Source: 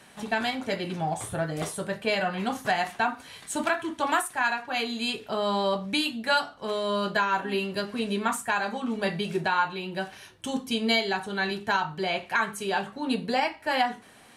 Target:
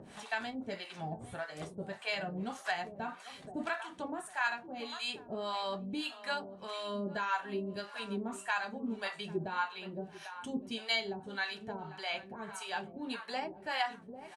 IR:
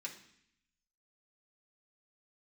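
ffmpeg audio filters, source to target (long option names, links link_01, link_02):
-filter_complex "[0:a]lowpass=frequency=9900:width=0.5412,lowpass=frequency=9900:width=1.3066,asplit=2[link_01][link_02];[link_02]adelay=797,lowpass=frequency=1900:poles=1,volume=-13dB,asplit=2[link_03][link_04];[link_04]adelay=797,lowpass=frequency=1900:poles=1,volume=0.42,asplit=2[link_05][link_06];[link_06]adelay=797,lowpass=frequency=1900:poles=1,volume=0.42,asplit=2[link_07][link_08];[link_08]adelay=797,lowpass=frequency=1900:poles=1,volume=0.42[link_09];[link_03][link_05][link_07][link_09]amix=inputs=4:normalize=0[link_10];[link_01][link_10]amix=inputs=2:normalize=0,acrossover=split=640[link_11][link_12];[link_11]aeval=exprs='val(0)*(1-1/2+1/2*cos(2*PI*1.7*n/s))':channel_layout=same[link_13];[link_12]aeval=exprs='val(0)*(1-1/2-1/2*cos(2*PI*1.7*n/s))':channel_layout=same[link_14];[link_13][link_14]amix=inputs=2:normalize=0,acompressor=mode=upward:threshold=-36dB:ratio=2.5,volume=-5.5dB"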